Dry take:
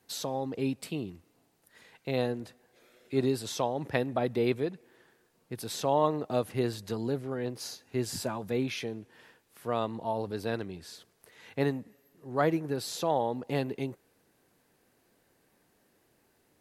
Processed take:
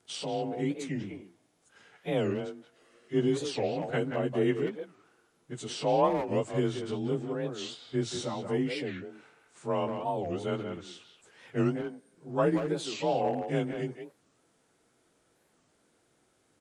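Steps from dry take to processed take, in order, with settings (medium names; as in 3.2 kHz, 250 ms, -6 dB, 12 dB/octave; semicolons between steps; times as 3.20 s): frequency axis rescaled in octaves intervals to 91%; speakerphone echo 180 ms, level -6 dB; warped record 45 rpm, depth 250 cents; trim +1.5 dB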